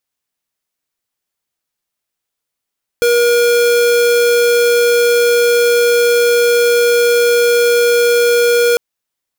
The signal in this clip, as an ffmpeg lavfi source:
ffmpeg -f lavfi -i "aevalsrc='0.282*(2*lt(mod(477*t,1),0.5)-1)':duration=5.75:sample_rate=44100" out.wav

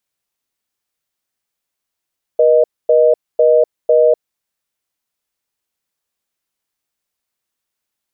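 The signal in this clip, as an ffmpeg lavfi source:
ffmpeg -f lavfi -i "aevalsrc='0.316*(sin(2*PI*480*t)+sin(2*PI*620*t))*clip(min(mod(t,0.5),0.25-mod(t,0.5))/0.005,0,1)':duration=1.83:sample_rate=44100" out.wav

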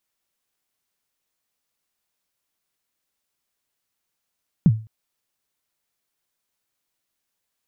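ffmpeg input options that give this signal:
ffmpeg -f lavfi -i "aevalsrc='0.447*pow(10,-3*t/0.34)*sin(2*PI*(200*0.046/log(110/200)*(exp(log(110/200)*min(t,0.046)/0.046)-1)+110*max(t-0.046,0)))':duration=0.21:sample_rate=44100" out.wav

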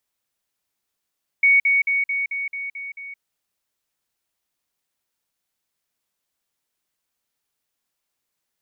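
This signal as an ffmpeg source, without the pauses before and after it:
ffmpeg -f lavfi -i "aevalsrc='pow(10,(-11.5-3*floor(t/0.22))/20)*sin(2*PI*2230*t)*clip(min(mod(t,0.22),0.17-mod(t,0.22))/0.005,0,1)':duration=1.76:sample_rate=44100" out.wav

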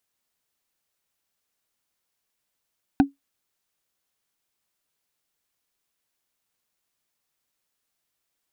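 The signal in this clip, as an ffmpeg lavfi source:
ffmpeg -f lavfi -i "aevalsrc='0.376*pow(10,-3*t/0.15)*sin(2*PI*278*t)+0.188*pow(10,-3*t/0.044)*sin(2*PI*766.4*t)+0.0944*pow(10,-3*t/0.02)*sin(2*PI*1502.3*t)+0.0473*pow(10,-3*t/0.011)*sin(2*PI*2483.4*t)+0.0237*pow(10,-3*t/0.007)*sin(2*PI*3708.5*t)':duration=0.45:sample_rate=44100" out.wav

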